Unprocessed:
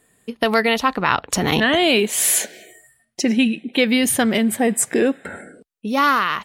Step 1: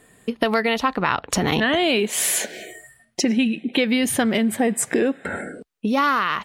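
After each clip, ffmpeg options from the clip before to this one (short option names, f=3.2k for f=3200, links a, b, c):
-af "highshelf=f=6.2k:g=-7,acompressor=threshold=-30dB:ratio=2.5,volume=8dB"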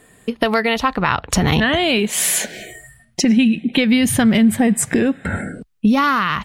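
-af "asubboost=boost=7.5:cutoff=150,volume=3.5dB"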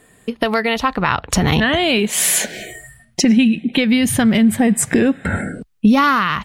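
-af "dynaudnorm=f=290:g=5:m=11.5dB,volume=-1dB"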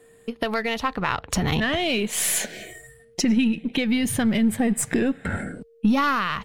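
-af "aeval=exprs='if(lt(val(0),0),0.708*val(0),val(0))':c=same,aeval=exprs='val(0)+0.00501*sin(2*PI*460*n/s)':c=same,volume=-6dB"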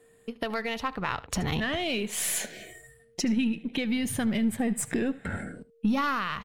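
-af "aecho=1:1:75:0.106,volume=-6dB"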